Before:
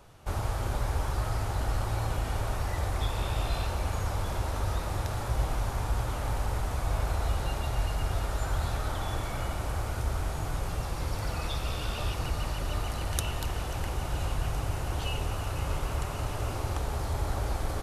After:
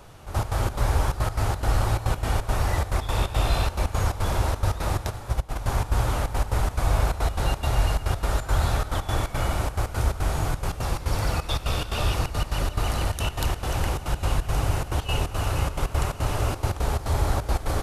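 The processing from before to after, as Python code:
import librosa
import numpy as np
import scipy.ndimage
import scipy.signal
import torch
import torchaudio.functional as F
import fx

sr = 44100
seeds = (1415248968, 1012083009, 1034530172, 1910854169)

y = fx.step_gate(x, sr, bpm=175, pattern='xxx.x.xx.x', floor_db=-12.0, edge_ms=4.5)
y = fx.upward_expand(y, sr, threshold_db=-32.0, expansion=2.5, at=(5.09, 5.55), fade=0.02)
y = F.gain(torch.from_numpy(y), 7.5).numpy()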